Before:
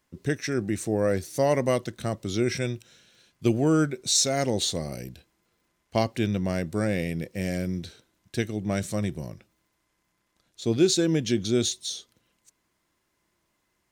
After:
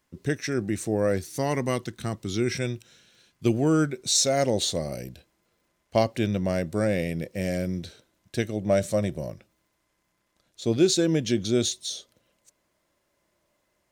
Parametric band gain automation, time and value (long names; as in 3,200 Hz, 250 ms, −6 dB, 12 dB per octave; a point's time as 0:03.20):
parametric band 580 Hz 0.4 octaves
+0.5 dB
from 0:01.22 −9 dB
from 0:02.52 −1 dB
from 0:04.11 +6 dB
from 0:08.51 +12.5 dB
from 0:09.30 +5 dB
from 0:11.92 +11.5 dB